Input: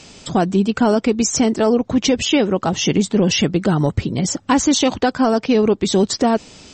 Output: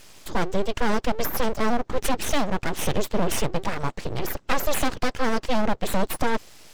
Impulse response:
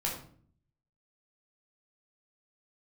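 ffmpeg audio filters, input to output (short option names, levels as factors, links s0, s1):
-filter_complex "[0:a]asettb=1/sr,asplit=3[s0][s1][s2];[s0]atrim=end=3.634[s3];[s1]atrim=start=3.63:end=4.03,asetpts=PTS-STARTPTS,afade=t=in:d=0.004:c=qsin,afade=t=out:st=0.396:d=0.004:c=qsin,lowshelf=f=300:t=q:w=1.5:g=-9[s4];[s2]atrim=start=4.026[s5];[s3][s4]acrossfade=d=0.004:c1=hsin:c2=qsin[s6];[s6][s5]acrossfade=d=0.004:c1=qsin:c2=hsin,aeval=exprs='abs(val(0))':c=same,volume=0.596"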